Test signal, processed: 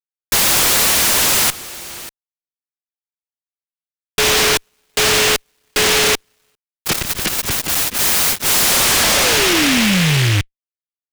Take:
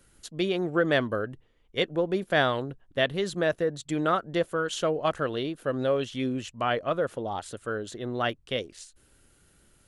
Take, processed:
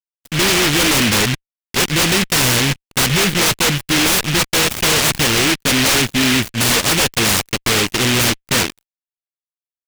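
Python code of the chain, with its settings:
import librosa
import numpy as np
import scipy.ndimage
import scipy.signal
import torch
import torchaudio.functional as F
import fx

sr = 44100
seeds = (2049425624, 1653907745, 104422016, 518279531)

y = scipy.signal.medfilt(x, 25)
y = fx.fuzz(y, sr, gain_db=41.0, gate_db=-49.0)
y = fx.noise_mod_delay(y, sr, seeds[0], noise_hz=2400.0, depth_ms=0.49)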